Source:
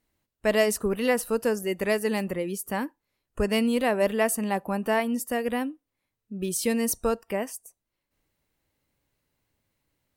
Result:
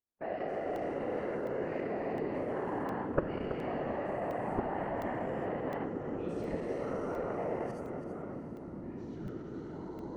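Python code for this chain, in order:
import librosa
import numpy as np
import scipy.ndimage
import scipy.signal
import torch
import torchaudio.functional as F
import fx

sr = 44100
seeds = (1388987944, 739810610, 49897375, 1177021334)

y = fx.spec_dilate(x, sr, span_ms=480)
y = fx.step_gate(y, sr, bpm=75, pattern='..xx.xxxx...', floor_db=-12.0, edge_ms=4.5)
y = fx.rider(y, sr, range_db=5, speed_s=0.5)
y = scipy.signal.sosfilt(scipy.signal.butter(2, 1200.0, 'lowpass', fs=sr, output='sos'), y)
y = fx.comb_fb(y, sr, f0_hz=130.0, decay_s=0.17, harmonics='all', damping=0.0, mix_pct=50)
y = fx.level_steps(y, sr, step_db=21)
y = fx.whisperise(y, sr, seeds[0])
y = fx.low_shelf(y, sr, hz=210.0, db=-9.0)
y = y + 10.0 ** (-9.5 / 20.0) * np.pad(y, (int(328 * sr / 1000.0), 0))[:len(y)]
y = fx.echo_pitch(y, sr, ms=85, semitones=-6, count=3, db_per_echo=-6.0)
y = fx.echo_diffused(y, sr, ms=752, feedback_pct=45, wet_db=-14.5)
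y = fx.buffer_crackle(y, sr, first_s=0.76, period_s=0.71, block=64, kind='zero')
y = y * librosa.db_to_amplitude(6.5)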